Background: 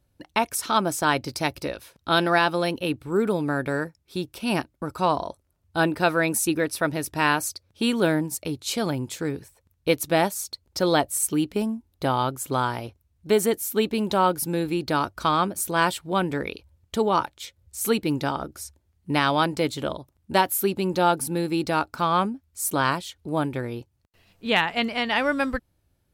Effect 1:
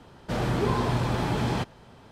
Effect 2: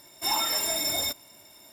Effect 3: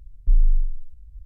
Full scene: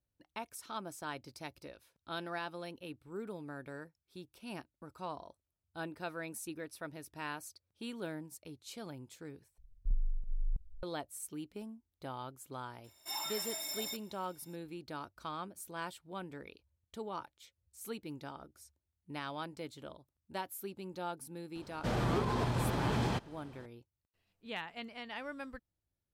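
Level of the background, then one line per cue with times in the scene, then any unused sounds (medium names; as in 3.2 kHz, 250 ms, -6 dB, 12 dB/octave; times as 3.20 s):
background -20 dB
9.58 s: replace with 3 -17 dB + chunks repeated in reverse 328 ms, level -1 dB
12.84 s: add 2 -12.5 dB + bass shelf 370 Hz -10.5 dB
21.55 s: add 1 -5 dB + peak limiter -18.5 dBFS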